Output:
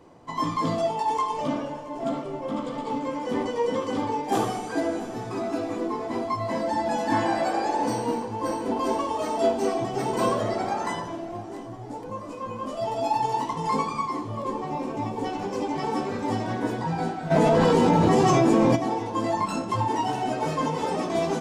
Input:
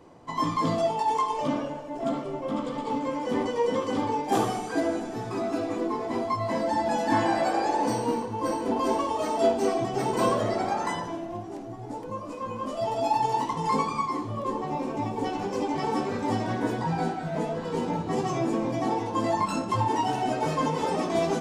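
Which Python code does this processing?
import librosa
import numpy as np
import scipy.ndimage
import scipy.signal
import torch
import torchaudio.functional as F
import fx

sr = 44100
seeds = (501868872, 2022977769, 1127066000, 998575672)

y = fx.echo_feedback(x, sr, ms=673, feedback_pct=51, wet_db=-19.5)
y = fx.env_flatten(y, sr, amount_pct=100, at=(17.3, 18.75), fade=0.02)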